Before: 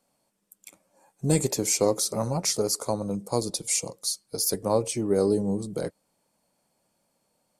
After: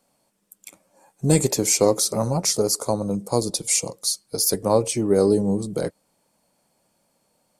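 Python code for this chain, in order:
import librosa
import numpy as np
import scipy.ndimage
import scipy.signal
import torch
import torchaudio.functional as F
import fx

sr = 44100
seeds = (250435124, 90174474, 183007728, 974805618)

y = fx.dynamic_eq(x, sr, hz=2200.0, q=0.85, threshold_db=-44.0, ratio=4.0, max_db=-4, at=(2.16, 3.55))
y = y * 10.0 ** (5.0 / 20.0)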